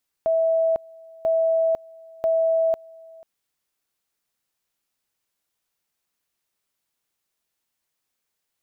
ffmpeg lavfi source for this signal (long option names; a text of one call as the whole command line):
ffmpeg -f lavfi -i "aevalsrc='pow(10,(-17-25*gte(mod(t,0.99),0.5))/20)*sin(2*PI*653*t)':duration=2.97:sample_rate=44100" out.wav